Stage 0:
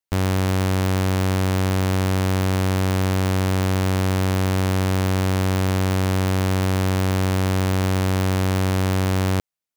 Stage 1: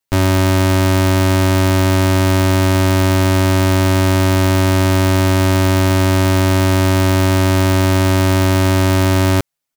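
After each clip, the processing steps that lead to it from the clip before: comb 7.4 ms, depth 91%; gain +6 dB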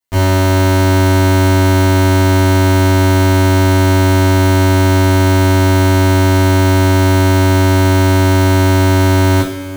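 reverb, pre-delay 3 ms, DRR -9.5 dB; gain -9 dB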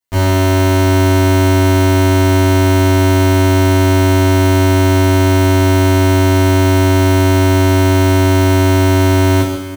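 echo 0.135 s -8.5 dB; gain -1 dB

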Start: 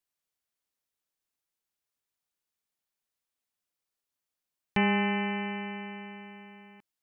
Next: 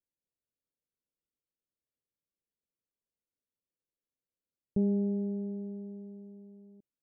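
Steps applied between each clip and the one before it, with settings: elliptic low-pass 550 Hz, stop band 50 dB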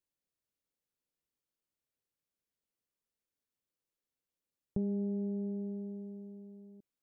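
compressor 3:1, threshold -34 dBFS, peak gain reduction 7.5 dB; gain +1 dB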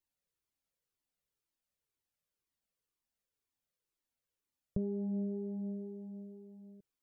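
cascading flanger falling 2 Hz; gain +4.5 dB

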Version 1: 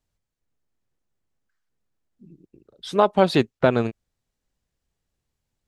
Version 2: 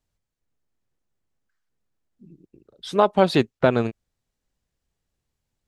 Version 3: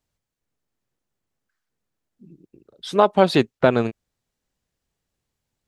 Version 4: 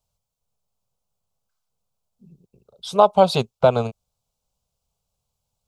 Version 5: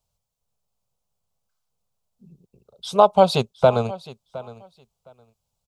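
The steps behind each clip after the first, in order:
nothing audible
low shelf 71 Hz -8 dB; gain +2 dB
fixed phaser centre 750 Hz, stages 4; gain +3.5 dB
feedback echo 0.713 s, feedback 17%, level -18.5 dB

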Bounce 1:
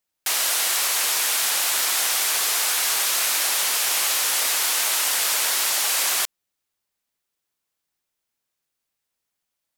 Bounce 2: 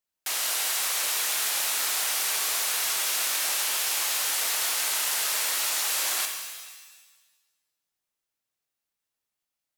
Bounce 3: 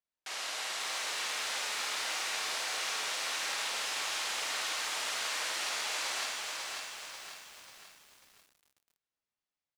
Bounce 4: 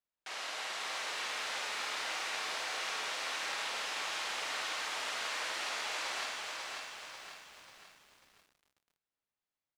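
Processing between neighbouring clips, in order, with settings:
shimmer reverb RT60 1.2 s, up +7 st, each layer -2 dB, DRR 4.5 dB; gain -7 dB
air absorption 88 m; tapped delay 53/261 ms -3.5/-8.5 dB; lo-fi delay 0.542 s, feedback 55%, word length 8-bit, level -3.5 dB; gain -6.5 dB
high shelf 5300 Hz -10.5 dB

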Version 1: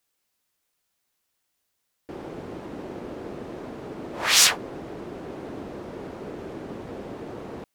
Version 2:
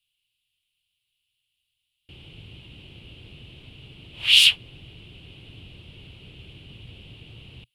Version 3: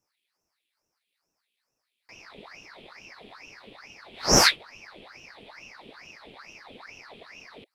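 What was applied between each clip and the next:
EQ curve 120 Hz 0 dB, 230 Hz -18 dB, 630 Hz -25 dB, 1200 Hz -23 dB, 1800 Hz -19 dB, 2900 Hz +11 dB, 6100 Hz -18 dB, 10000 Hz -6 dB, 15000 Hz -17 dB; gain +2.5 dB
ring modulator with a swept carrier 1500 Hz, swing 80%, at 2.3 Hz

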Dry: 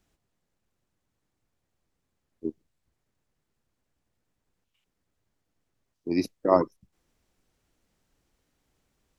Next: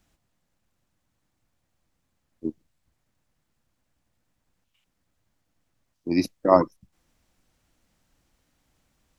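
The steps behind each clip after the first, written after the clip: bell 410 Hz -7.5 dB 0.38 oct; gain +4.5 dB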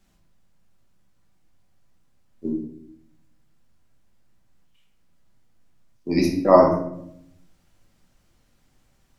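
vibrato 7.6 Hz 43 cents; shoebox room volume 160 m³, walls mixed, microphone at 1.2 m

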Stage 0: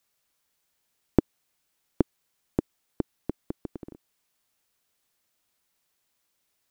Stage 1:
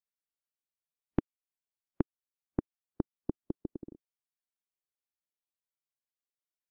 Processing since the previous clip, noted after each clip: compressor, threshold -28 dBFS, peak gain reduction 15 dB; spectral expander 1.5:1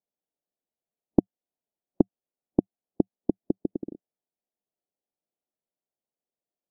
EQ curve 110 Hz 0 dB, 190 Hz +10 dB, 710 Hz +11 dB, 1400 Hz -12 dB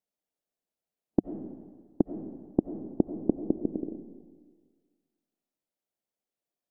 limiter -7.5 dBFS, peak gain reduction 5 dB; reverb RT60 1.6 s, pre-delay 50 ms, DRR 8 dB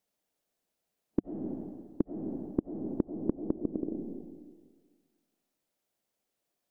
compressor 4:1, threshold -36 dBFS, peak gain reduction 16 dB; gain +7.5 dB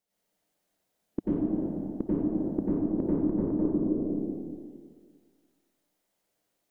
plate-style reverb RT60 1.5 s, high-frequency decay 0.65×, pre-delay 80 ms, DRR -9 dB; gain -3.5 dB

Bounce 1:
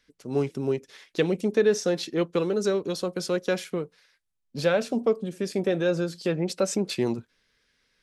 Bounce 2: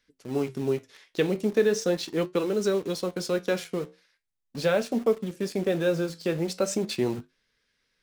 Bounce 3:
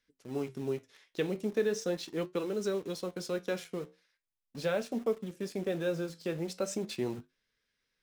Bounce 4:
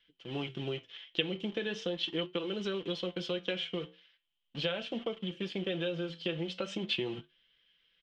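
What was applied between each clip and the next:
in parallel at -6 dB: requantised 6-bit, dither none; on the sum: flange 0.4 Hz, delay 8.6 ms, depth 6.6 ms, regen -70%
notch 4500 Hz, Q 26; gain -7.5 dB
comb 5.9 ms, depth 52%; compressor 6:1, threshold -33 dBFS, peak gain reduction 9.5 dB; synth low-pass 3100 Hz, resonance Q 13; gain +1 dB

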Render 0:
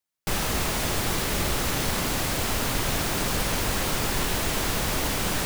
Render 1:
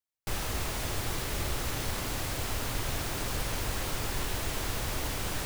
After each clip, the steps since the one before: EQ curve 120 Hz 0 dB, 180 Hz -8 dB, 310 Hz -4 dB; gain -4 dB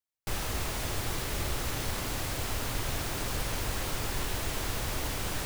nothing audible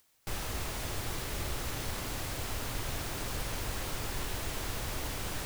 upward compressor, threshold -45 dBFS; gain -3.5 dB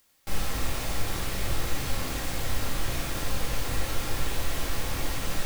reverb, pre-delay 4 ms, DRR -3 dB

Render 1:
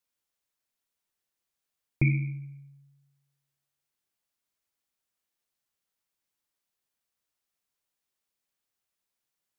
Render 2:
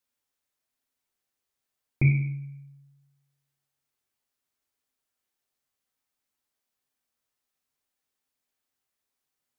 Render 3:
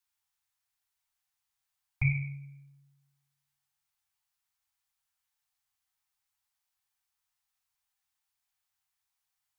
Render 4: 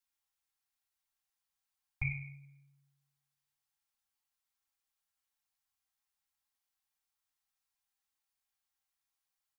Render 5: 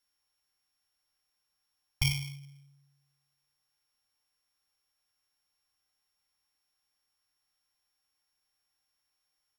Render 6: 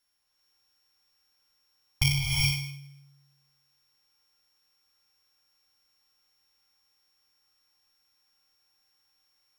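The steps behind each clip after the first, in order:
reverb RT60 0.70 s, pre-delay 4 ms, DRR 3.5 dB
elliptic band-stop 120–790 Hz
comb 3.7 ms, depth 47%; gain -5 dB
sample sorter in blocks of 8 samples; gain +7 dB
non-linear reverb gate 0.44 s rising, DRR -2.5 dB; gain +3.5 dB

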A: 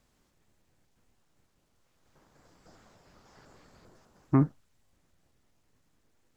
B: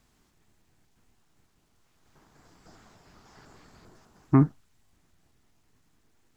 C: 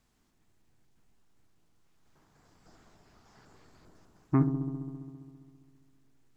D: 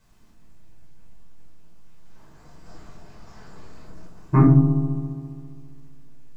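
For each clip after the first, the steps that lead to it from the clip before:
bell 540 Hz -9 dB 0.25 oct; gain +4 dB
dark delay 67 ms, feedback 81%, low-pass 660 Hz, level -8 dB; gain -6 dB
shoebox room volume 530 m³, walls furnished, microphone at 5.1 m; gain +3.5 dB

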